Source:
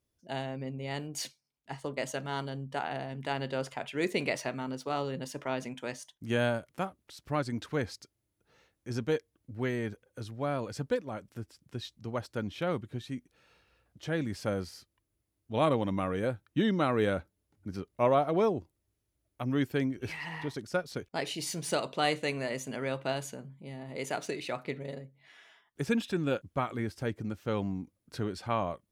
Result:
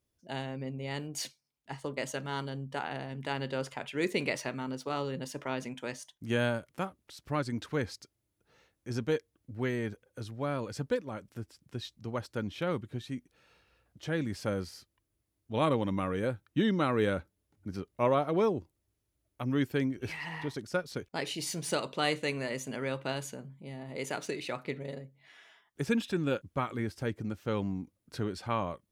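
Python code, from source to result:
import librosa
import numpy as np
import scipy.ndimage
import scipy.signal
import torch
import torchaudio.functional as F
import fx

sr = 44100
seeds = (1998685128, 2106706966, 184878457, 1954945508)

y = fx.dynamic_eq(x, sr, hz=690.0, q=4.8, threshold_db=-48.0, ratio=4.0, max_db=-6)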